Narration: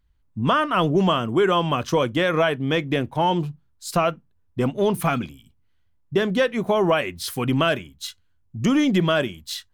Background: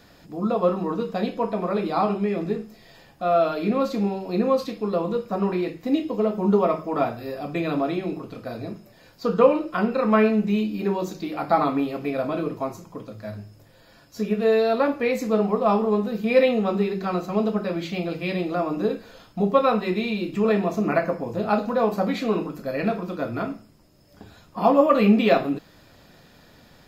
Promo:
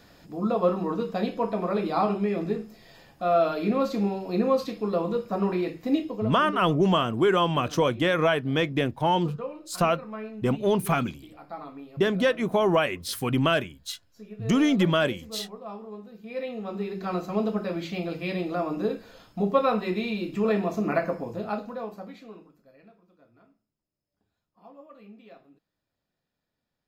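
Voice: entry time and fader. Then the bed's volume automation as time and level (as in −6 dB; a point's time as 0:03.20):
5.85 s, −2.5 dB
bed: 0:05.96 −2 dB
0:06.65 −19 dB
0:16.19 −19 dB
0:17.13 −3.5 dB
0:21.21 −3.5 dB
0:22.93 −32 dB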